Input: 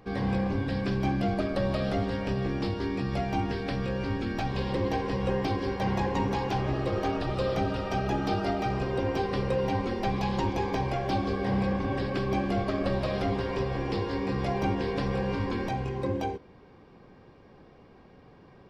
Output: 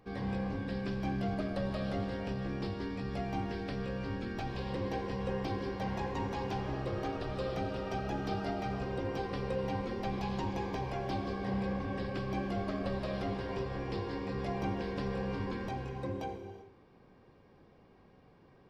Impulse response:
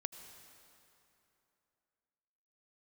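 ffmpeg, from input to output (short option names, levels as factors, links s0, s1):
-filter_complex "[1:a]atrim=start_sample=2205,afade=t=out:st=0.44:d=0.01,atrim=end_sample=19845,asetrate=43218,aresample=44100[s0];[0:a][s0]afir=irnorm=-1:irlink=0,volume=0.531"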